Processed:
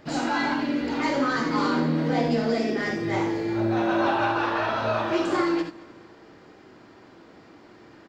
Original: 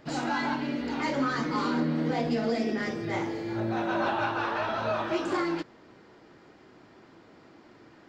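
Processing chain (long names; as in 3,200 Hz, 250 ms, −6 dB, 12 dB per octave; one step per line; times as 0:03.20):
on a send: repeating echo 218 ms, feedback 51%, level −23 dB
on the sum: reverb whose tail is shaped and stops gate 100 ms rising, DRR 5 dB
level +3 dB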